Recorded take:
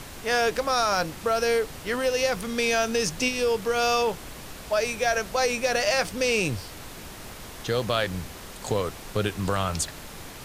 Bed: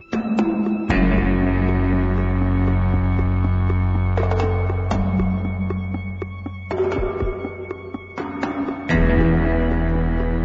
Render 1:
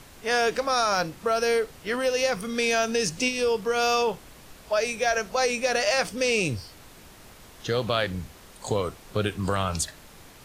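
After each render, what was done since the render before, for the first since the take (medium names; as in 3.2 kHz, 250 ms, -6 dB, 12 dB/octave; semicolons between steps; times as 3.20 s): noise print and reduce 8 dB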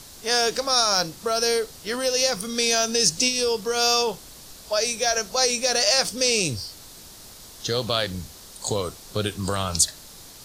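resonant high shelf 3.3 kHz +8.5 dB, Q 1.5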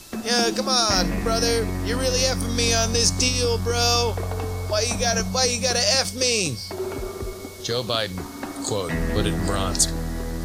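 add bed -8.5 dB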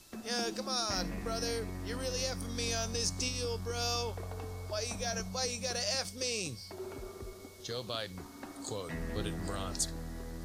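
trim -14 dB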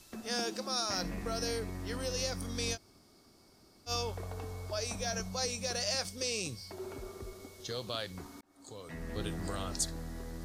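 0.40–1.04 s: high-pass 160 Hz 6 dB/octave; 2.75–3.89 s: room tone, crossfade 0.06 s; 8.41–9.33 s: fade in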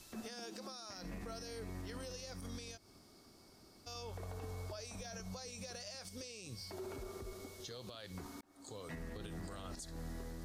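compression 10:1, threshold -39 dBFS, peak gain reduction 12 dB; peak limiter -37 dBFS, peak gain reduction 10.5 dB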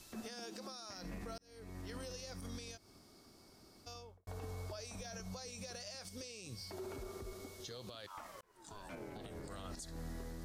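1.38–1.92 s: fade in; 3.81–4.27 s: studio fade out; 8.06–9.48 s: ring modulator 1.2 kHz -> 220 Hz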